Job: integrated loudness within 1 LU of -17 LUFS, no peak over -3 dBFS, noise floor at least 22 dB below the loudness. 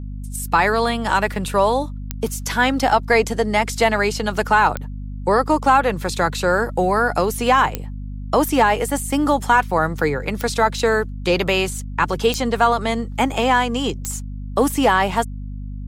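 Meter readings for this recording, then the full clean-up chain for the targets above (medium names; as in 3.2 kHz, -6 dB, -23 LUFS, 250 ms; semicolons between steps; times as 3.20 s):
clicks found 6; hum 50 Hz; highest harmonic 250 Hz; hum level -27 dBFS; loudness -19.0 LUFS; peak level -3.5 dBFS; loudness target -17.0 LUFS
-> de-click; de-hum 50 Hz, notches 5; trim +2 dB; peak limiter -3 dBFS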